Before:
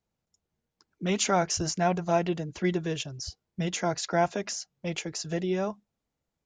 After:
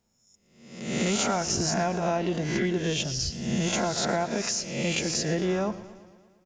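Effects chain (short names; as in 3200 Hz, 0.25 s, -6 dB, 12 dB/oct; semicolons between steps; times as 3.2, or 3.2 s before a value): spectral swells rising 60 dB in 0.74 s; bell 230 Hz +10 dB 0.22 oct; compressor, threshold -29 dBFS, peak gain reduction 11 dB; on a send: frequency-shifting echo 0.134 s, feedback 46%, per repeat -96 Hz, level -23.5 dB; on the sum: warbling echo 0.115 s, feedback 63%, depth 79 cents, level -17 dB; gain +5.5 dB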